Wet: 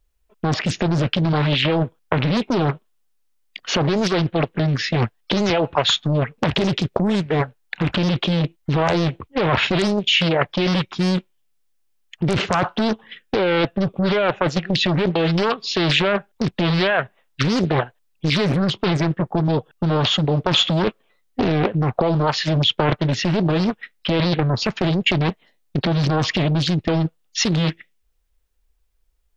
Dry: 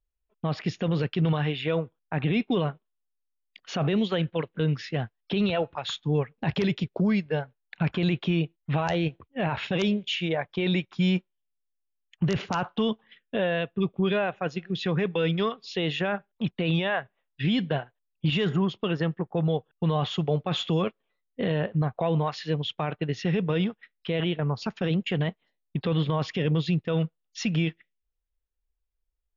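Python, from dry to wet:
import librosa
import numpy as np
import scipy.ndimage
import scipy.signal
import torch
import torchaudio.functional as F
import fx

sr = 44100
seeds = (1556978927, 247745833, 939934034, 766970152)

p1 = fx.over_compress(x, sr, threshold_db=-30.0, ratio=-0.5)
p2 = x + (p1 * 10.0 ** (3.0 / 20.0))
p3 = fx.doppler_dist(p2, sr, depth_ms=0.98)
y = p3 * 10.0 ** (3.5 / 20.0)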